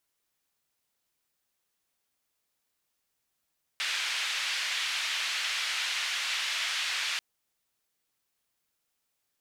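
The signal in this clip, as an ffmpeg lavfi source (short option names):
-f lavfi -i "anoisesrc=c=white:d=3.39:r=44100:seed=1,highpass=f=2100,lowpass=f=3000,volume=-14.3dB"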